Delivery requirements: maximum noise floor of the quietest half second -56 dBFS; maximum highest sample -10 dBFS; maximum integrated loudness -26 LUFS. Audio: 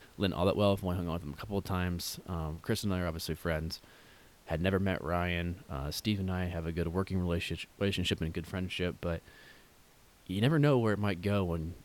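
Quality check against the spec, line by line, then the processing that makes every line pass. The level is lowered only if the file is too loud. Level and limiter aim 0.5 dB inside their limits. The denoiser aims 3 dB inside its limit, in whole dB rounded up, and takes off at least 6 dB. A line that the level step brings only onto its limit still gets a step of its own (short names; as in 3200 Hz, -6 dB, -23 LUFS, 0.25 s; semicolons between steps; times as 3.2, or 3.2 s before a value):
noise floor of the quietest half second -61 dBFS: OK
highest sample -14.0 dBFS: OK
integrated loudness -33.5 LUFS: OK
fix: none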